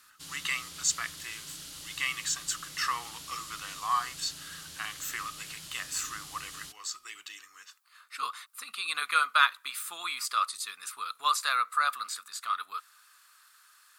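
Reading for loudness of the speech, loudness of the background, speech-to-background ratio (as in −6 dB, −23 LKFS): −31.5 LKFS, −43.0 LKFS, 11.5 dB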